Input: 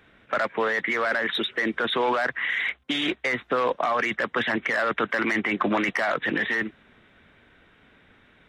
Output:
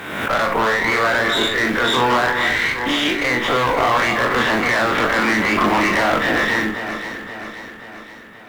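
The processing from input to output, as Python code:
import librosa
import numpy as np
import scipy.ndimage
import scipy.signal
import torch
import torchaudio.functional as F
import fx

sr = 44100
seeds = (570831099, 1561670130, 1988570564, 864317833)

p1 = fx.spec_dilate(x, sr, span_ms=60)
p2 = scipy.signal.sosfilt(scipy.signal.butter(2, 110.0, 'highpass', fs=sr, output='sos'), p1)
p3 = fx.peak_eq(p2, sr, hz=940.0, db=6.0, octaves=0.76)
p4 = fx.quant_companded(p3, sr, bits=6)
p5 = fx.tube_stage(p4, sr, drive_db=18.0, bias=0.5)
p6 = fx.doubler(p5, sr, ms=41.0, db=-6.5)
p7 = p6 + fx.echo_alternate(p6, sr, ms=264, hz=1700.0, feedback_pct=73, wet_db=-7.0, dry=0)
p8 = fx.pre_swell(p7, sr, db_per_s=48.0)
y = p8 * librosa.db_to_amplitude(4.5)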